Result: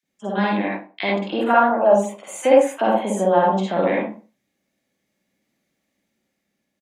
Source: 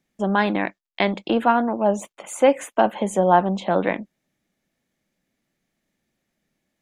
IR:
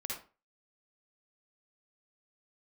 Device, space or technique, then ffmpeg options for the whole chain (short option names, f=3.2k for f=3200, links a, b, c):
far laptop microphone: -filter_complex "[1:a]atrim=start_sample=2205[a];[0:a][a]afir=irnorm=-1:irlink=0,highpass=f=140:p=1,dynaudnorm=f=450:g=7:m=6dB,asettb=1/sr,asplit=3[b][c][d];[b]atrim=end=1.504[e];[c]atrim=start=1.5:end=1.93,asetpts=PTS-STARTPTS,afade=t=in:d=0.004:c=qsin,afade=t=out:st=0.426:d=0.004:c=qsin,equalizer=f=250:t=o:w=0.67:g=-6,equalizer=f=630:t=o:w=0.67:g=9,equalizer=f=1.6k:t=o:w=0.67:g=9,equalizer=f=10k:t=o:w=0.67:g=9[f];[d]atrim=start=1.926[g];[e][f]acrossfade=d=0.004:c1=hsin:c2=qsin[h];[h][g]acrossfade=d=0.004:c1=qsin:c2=hsin,acrossover=split=1400[i][j];[i]adelay=30[k];[k][j]amix=inputs=2:normalize=0"